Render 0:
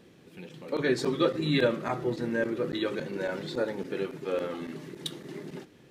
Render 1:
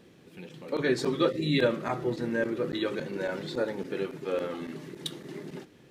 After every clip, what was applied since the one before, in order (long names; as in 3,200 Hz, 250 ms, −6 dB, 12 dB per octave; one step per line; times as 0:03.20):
gain on a spectral selection 0:01.31–0:01.60, 650–1,800 Hz −14 dB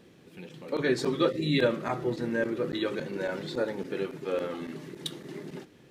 no processing that can be heard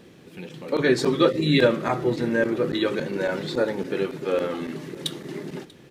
single-tap delay 639 ms −23 dB
level +6.5 dB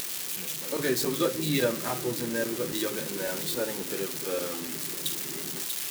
spike at every zero crossing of −13 dBFS
upward compression, threshold −24 dBFS
level −8 dB